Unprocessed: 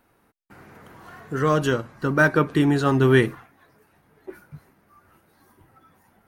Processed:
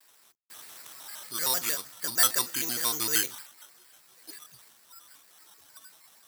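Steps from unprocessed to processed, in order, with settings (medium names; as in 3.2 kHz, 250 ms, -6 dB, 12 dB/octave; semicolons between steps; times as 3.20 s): companding laws mixed up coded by mu; low-pass 9.1 kHz 24 dB/octave; bass shelf 67 Hz +9 dB; hum notches 60/120/180/240/300 Hz; careless resampling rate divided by 8×, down none, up hold; in parallel at -1 dB: peak limiter -15 dBFS, peak gain reduction 10.5 dB; on the sum: differentiator; word length cut 12-bit, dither none; vibrato with a chosen wave square 6.5 Hz, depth 250 cents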